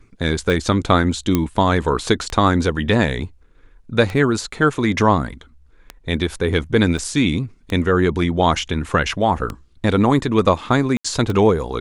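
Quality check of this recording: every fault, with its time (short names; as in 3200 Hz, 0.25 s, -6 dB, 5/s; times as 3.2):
tick 33 1/3 rpm
1.35 pop -4 dBFS
6.98 gap 4.9 ms
10.97–11.04 gap 75 ms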